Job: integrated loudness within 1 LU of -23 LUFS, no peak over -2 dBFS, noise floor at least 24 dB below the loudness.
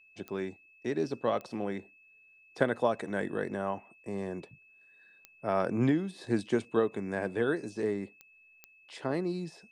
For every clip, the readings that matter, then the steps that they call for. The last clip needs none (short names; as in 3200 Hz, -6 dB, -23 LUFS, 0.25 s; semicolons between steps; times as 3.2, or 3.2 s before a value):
clicks 5; steady tone 2600 Hz; tone level -58 dBFS; loudness -33.0 LUFS; peak -10.5 dBFS; loudness target -23.0 LUFS
-> de-click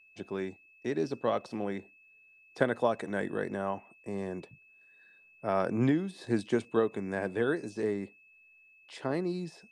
clicks 0; steady tone 2600 Hz; tone level -58 dBFS
-> notch 2600 Hz, Q 30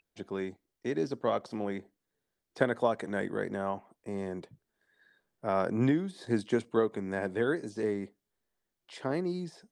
steady tone none; loudness -33.0 LUFS; peak -10.5 dBFS; loudness target -23.0 LUFS
-> gain +10 dB; limiter -2 dBFS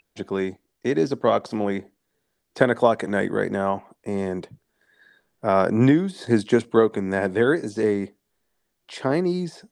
loudness -23.0 LUFS; peak -2.0 dBFS; noise floor -76 dBFS